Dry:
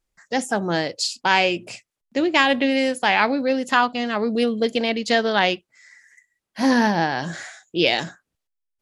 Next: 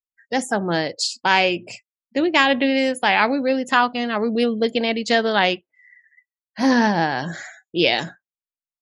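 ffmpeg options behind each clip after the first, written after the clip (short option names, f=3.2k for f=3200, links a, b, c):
-af "afftdn=nr=34:nf=-43,volume=1dB"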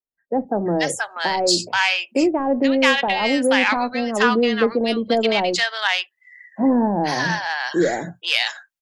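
-filter_complex "[0:a]asplit=2[a][b];[b]acompressor=threshold=-24dB:ratio=6,volume=0.5dB[c];[a][c]amix=inputs=2:normalize=0,asoftclip=type=tanh:threshold=-3dB,acrossover=split=160|910[d][e][f];[d]adelay=40[g];[f]adelay=480[h];[g][e][h]amix=inputs=3:normalize=0"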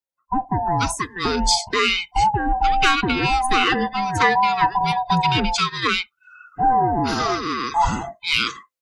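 -af "afftfilt=real='real(if(lt(b,1008),b+24*(1-2*mod(floor(b/24),2)),b),0)':imag='imag(if(lt(b,1008),b+24*(1-2*mod(floor(b/24),2)),b),0)':win_size=2048:overlap=0.75"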